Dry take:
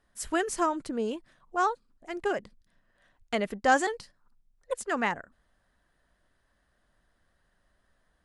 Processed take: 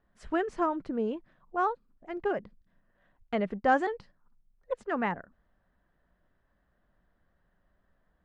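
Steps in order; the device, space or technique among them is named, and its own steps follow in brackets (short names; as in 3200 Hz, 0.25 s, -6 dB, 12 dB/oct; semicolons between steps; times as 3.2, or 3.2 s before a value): phone in a pocket (LPF 3600 Hz 12 dB/oct; bell 180 Hz +5 dB 0.31 oct; high shelf 2100 Hz -10.5 dB)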